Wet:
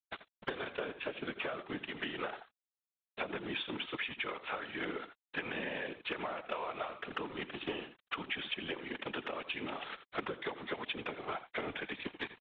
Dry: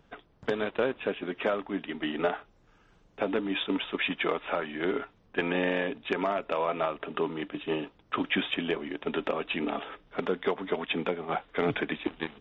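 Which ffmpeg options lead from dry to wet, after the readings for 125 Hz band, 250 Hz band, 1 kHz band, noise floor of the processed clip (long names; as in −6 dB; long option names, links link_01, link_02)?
−10.0 dB, −11.5 dB, −8.0 dB, below −85 dBFS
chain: -af "aresample=8000,aeval=exprs='sgn(val(0))*max(abs(val(0))-0.00447,0)':channel_layout=same,aresample=44100,tiltshelf=frequency=870:gain=-4.5,aecho=1:1:82:0.168,acompressor=threshold=-40dB:ratio=12,afftfilt=real='hypot(re,im)*cos(2*PI*random(0))':imag='hypot(re,im)*sin(2*PI*random(1))':win_size=512:overlap=0.75,volume=11dB"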